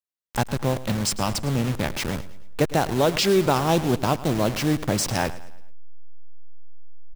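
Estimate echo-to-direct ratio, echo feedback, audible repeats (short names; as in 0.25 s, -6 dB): -16.0 dB, 44%, 3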